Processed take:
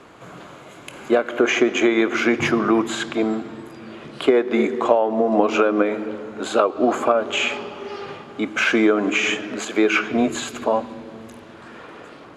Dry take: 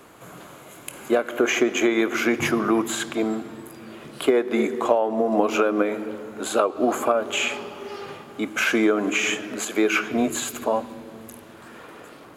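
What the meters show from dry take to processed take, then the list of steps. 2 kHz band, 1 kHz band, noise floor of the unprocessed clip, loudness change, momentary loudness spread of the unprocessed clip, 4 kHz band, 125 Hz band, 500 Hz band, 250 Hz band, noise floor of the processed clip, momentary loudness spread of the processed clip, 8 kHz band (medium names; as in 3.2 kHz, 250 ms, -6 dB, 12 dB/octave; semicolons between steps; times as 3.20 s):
+3.0 dB, +3.0 dB, -45 dBFS, +3.0 dB, 19 LU, +2.5 dB, +3.0 dB, +3.0 dB, +3.0 dB, -42 dBFS, 19 LU, -3.0 dB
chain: low-pass 5.4 kHz 12 dB/octave; trim +3 dB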